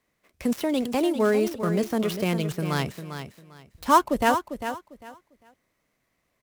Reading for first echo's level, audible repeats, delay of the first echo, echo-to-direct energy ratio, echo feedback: -9.5 dB, 2, 0.399 s, -9.5 dB, 22%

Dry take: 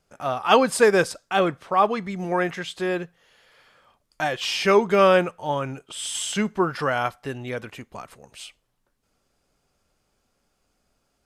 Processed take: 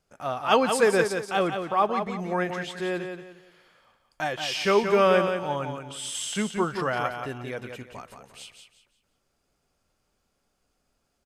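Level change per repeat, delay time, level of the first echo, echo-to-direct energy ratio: -10.5 dB, 0.176 s, -7.0 dB, -6.5 dB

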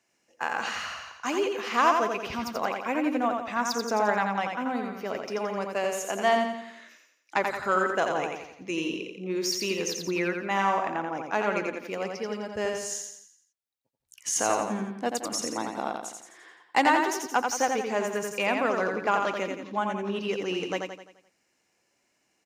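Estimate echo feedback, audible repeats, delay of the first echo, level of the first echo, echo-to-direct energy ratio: 47%, 5, 86 ms, -4.5 dB, -3.5 dB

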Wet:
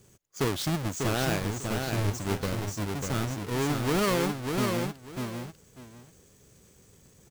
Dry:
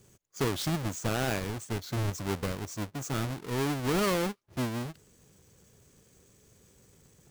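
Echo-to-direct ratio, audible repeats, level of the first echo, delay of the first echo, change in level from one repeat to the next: -4.5 dB, 2, -4.5 dB, 0.595 s, -13.5 dB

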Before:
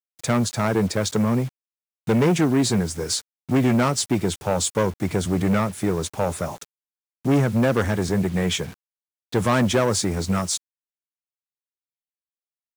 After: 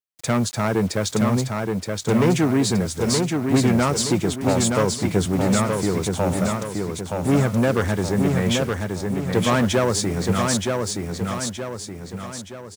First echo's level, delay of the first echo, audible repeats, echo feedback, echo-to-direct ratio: -4.0 dB, 0.922 s, 5, 46%, -3.0 dB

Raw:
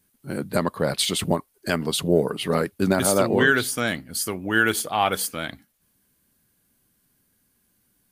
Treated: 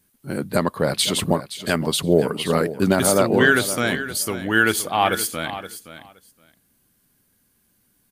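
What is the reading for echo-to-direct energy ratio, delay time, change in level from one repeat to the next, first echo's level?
-13.0 dB, 0.52 s, -16.5 dB, -13.0 dB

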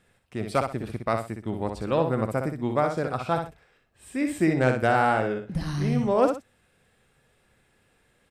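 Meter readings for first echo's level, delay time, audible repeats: -6.0 dB, 62 ms, 2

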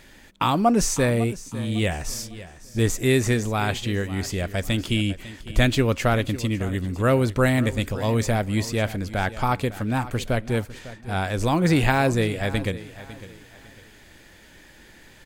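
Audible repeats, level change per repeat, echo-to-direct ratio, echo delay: 2, -10.0 dB, -15.5 dB, 0.552 s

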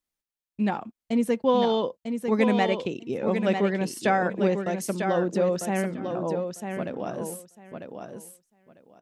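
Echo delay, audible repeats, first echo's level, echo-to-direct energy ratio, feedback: 0.948 s, 2, -6.5 dB, -6.5 dB, 16%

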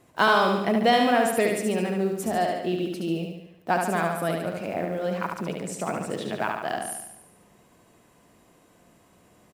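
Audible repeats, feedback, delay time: 6, 55%, 72 ms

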